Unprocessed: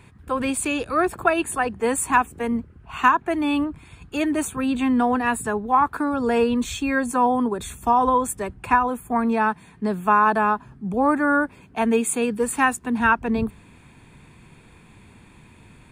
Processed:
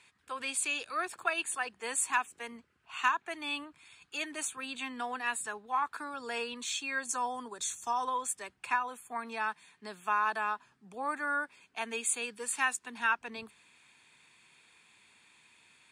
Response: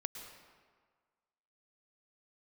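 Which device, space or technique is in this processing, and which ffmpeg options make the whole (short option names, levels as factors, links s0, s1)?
piezo pickup straight into a mixer: -filter_complex "[0:a]lowpass=5400,aderivative,asettb=1/sr,asplit=3[s0][s1][s2];[s0]atrim=end=7.094[s3];[s1]atrim=start=7.09:end=8.05,asetpts=PTS-STARTPTS,afade=t=in:d=0.004:c=qsin,afade=t=out:st=0.956:d=0.004:c=qsin,equalizer=f=100:t=o:w=0.67:g=7,equalizer=f=2500:t=o:w=0.67:g=-4,equalizer=f=6300:t=o:w=0.67:g=10[s4];[s2]atrim=start=8.046[s5];[s3][s4]acrossfade=d=0.004:c1=hsin:c2=qsin[s6];[s6][s5]acrossfade=d=0.004:c1=qsin:c2=hsin,volume=1.58"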